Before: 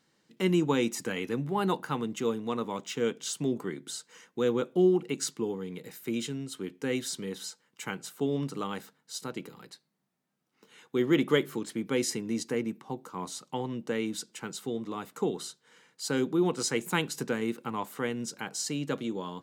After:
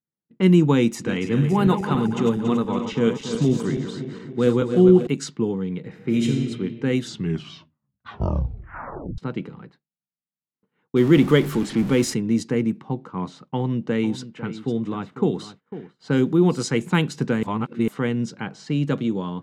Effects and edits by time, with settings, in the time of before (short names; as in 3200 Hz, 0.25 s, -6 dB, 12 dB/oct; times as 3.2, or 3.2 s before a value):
0.83–5.07 regenerating reverse delay 0.14 s, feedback 73%, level -8 dB
5.87–6.29 reverb throw, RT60 2.3 s, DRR 0 dB
6.99 tape stop 2.19 s
10.96–12.14 zero-crossing step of -35 dBFS
13.49–16.58 echo 0.499 s -14 dB
17.43–17.88 reverse
whole clip: tone controls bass +11 dB, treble -4 dB; expander -44 dBFS; low-pass opened by the level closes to 1500 Hz, open at -21 dBFS; gain +5 dB